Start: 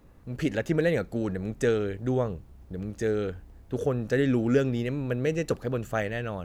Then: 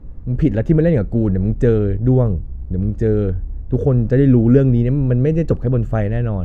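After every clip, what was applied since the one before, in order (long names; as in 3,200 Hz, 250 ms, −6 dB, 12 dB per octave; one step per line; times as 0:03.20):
spectral tilt −4.5 dB per octave
level +3 dB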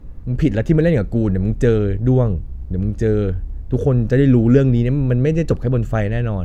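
high-shelf EQ 2,000 Hz +11.5 dB
level −1 dB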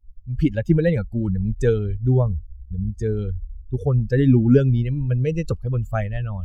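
spectral dynamics exaggerated over time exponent 2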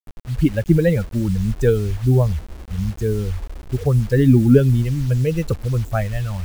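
bit reduction 7 bits
level +2.5 dB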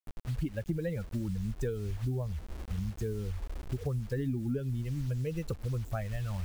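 downward compressor 6 to 1, threshold −26 dBFS, peak gain reduction 18 dB
level −5 dB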